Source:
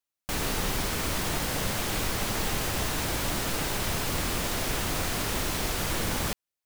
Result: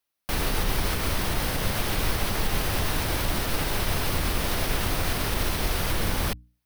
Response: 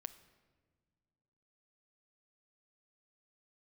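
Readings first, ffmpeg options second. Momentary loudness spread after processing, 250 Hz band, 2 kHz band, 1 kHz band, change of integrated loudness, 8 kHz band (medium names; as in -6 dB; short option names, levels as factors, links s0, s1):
1 LU, +1.5 dB, +2.0 dB, +2.0 dB, +2.0 dB, -1.5 dB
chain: -filter_complex "[0:a]equalizer=f=7200:t=o:w=0.4:g=-8.5,bandreject=f=60:t=h:w=6,bandreject=f=120:t=h:w=6,bandreject=f=180:t=h:w=6,bandreject=f=240:t=h:w=6,bandreject=f=300:t=h:w=6,acrossover=split=100[s0][s1];[s1]alimiter=level_in=1.33:limit=0.0631:level=0:latency=1:release=236,volume=0.75[s2];[s0][s2]amix=inputs=2:normalize=0,volume=2.37"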